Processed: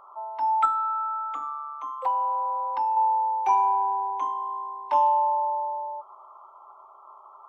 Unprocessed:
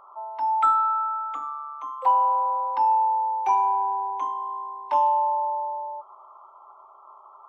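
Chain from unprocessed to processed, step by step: 0.65–2.97 compressor 2:1, threshold -27 dBFS, peak gain reduction 6.5 dB

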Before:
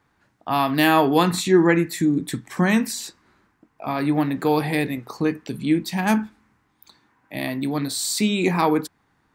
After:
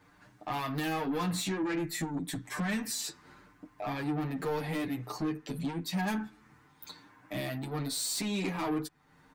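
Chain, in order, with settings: comb 6.7 ms, depth 42%; compressor 2:1, threshold -40 dBFS, peak gain reduction 15.5 dB; soft clip -32.5 dBFS, distortion -10 dB; endless flanger 8.2 ms +0.86 Hz; gain +7 dB

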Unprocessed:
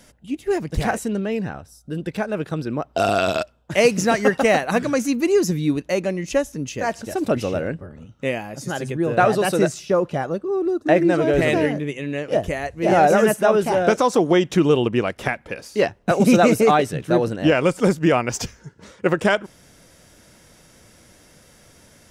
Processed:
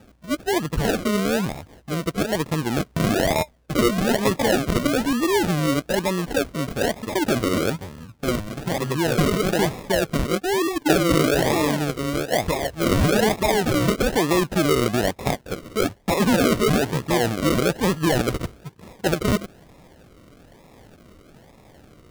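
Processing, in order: in parallel at -1 dB: negative-ratio compressor -22 dBFS, ratio -1; 10.66–11.27 on the sum: comb 6.9 ms, depth 72%; decimation with a swept rate 41×, swing 60% 1.1 Hz; gain -5.5 dB

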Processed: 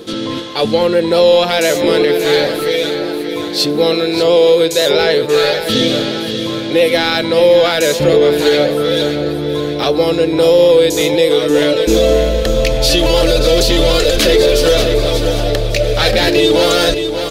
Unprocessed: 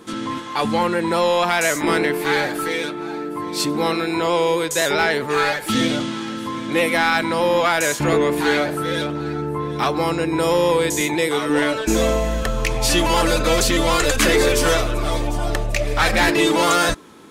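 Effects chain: graphic EQ 250/500/1000/2000/4000/8000 Hz -5/+9/-11/-5/+8/-8 dB; feedback echo 0.582 s, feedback 47%, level -10 dB; reverse; upward compressor, threshold -21 dBFS; reverse; maximiser +7 dB; gain -1 dB

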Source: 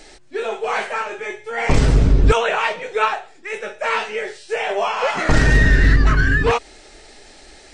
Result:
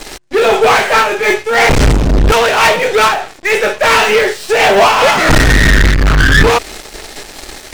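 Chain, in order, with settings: sample leveller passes 5; noise-modulated level, depth 60%; gain +3 dB

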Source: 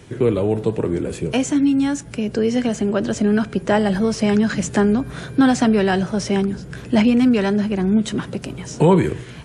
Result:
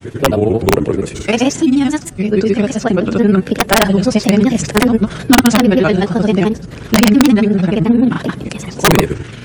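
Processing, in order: grains 73 ms, grains 23/s, pitch spread up and down by 3 st; wrapped overs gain 8.5 dB; gain +7.5 dB

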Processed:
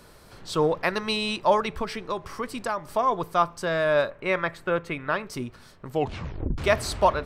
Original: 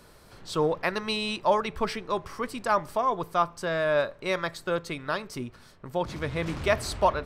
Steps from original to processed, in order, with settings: 1.73–2.91 compressor 5:1, threshold -28 dBFS, peak gain reduction 9 dB; 4.1–5.27 resonant high shelf 3300 Hz -9 dB, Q 1.5; 5.9 tape stop 0.68 s; gain +2.5 dB

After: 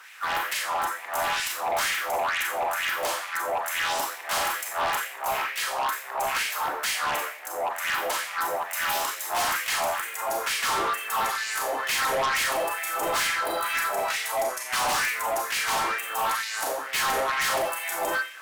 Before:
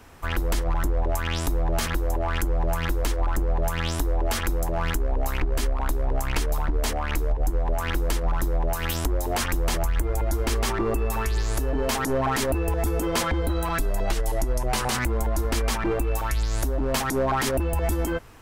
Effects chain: harmoniser +3 st -8 dB; Schroeder reverb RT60 0.54 s, combs from 29 ms, DRR 0 dB; LFO high-pass sine 2.2 Hz 700–2200 Hz; in parallel at -12 dB: sine folder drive 14 dB, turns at -7.5 dBFS; on the sum: gain -8 dB

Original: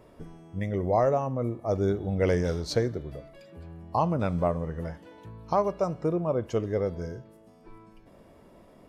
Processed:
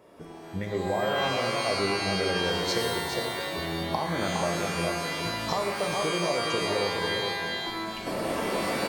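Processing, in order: recorder AGC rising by 20 dB/s; HPF 320 Hz 6 dB/oct; on a send: echo 0.411 s -8 dB; on the sum: compressor, threshold -26 dBFS, peak gain reduction 8.5 dB; shimmer reverb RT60 1.5 s, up +12 st, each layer -2 dB, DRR 3 dB

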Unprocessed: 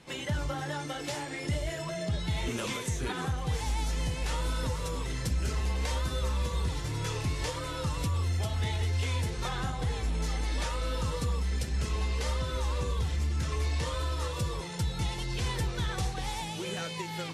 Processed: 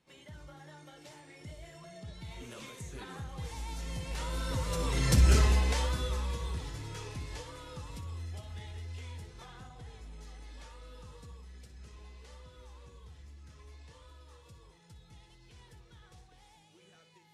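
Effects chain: Doppler pass-by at 5.26, 9 m/s, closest 2.2 m; flutter echo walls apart 10.2 m, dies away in 0.29 s; gain +8 dB

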